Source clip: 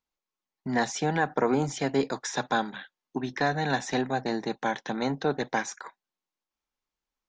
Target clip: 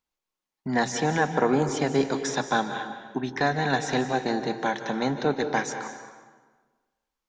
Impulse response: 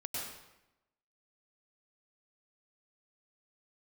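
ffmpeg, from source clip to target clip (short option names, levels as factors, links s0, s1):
-filter_complex "[0:a]asplit=2[s0][s1];[1:a]atrim=start_sample=2205,asetrate=28224,aresample=44100[s2];[s1][s2]afir=irnorm=-1:irlink=0,volume=0.316[s3];[s0][s3]amix=inputs=2:normalize=0"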